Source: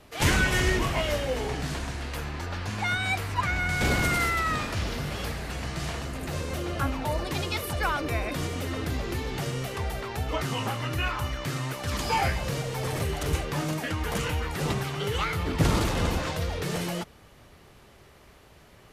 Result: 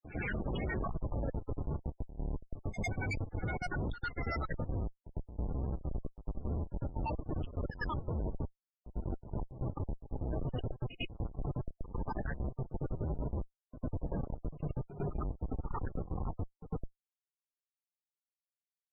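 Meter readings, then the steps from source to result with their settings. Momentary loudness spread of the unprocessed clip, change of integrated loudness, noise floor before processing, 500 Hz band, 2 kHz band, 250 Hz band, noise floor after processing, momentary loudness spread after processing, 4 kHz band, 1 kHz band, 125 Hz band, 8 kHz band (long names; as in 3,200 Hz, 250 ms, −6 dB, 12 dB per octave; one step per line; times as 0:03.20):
9 LU, −11.0 dB, −54 dBFS, −11.5 dB, −16.0 dB, −9.0 dB, below −85 dBFS, 7 LU, −22.5 dB, −14.5 dB, −8.5 dB, below −25 dB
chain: time-frequency cells dropped at random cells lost 68%
comparator with hysteresis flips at −30 dBFS
backwards echo 102 ms −12.5 dB
spectral peaks only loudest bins 32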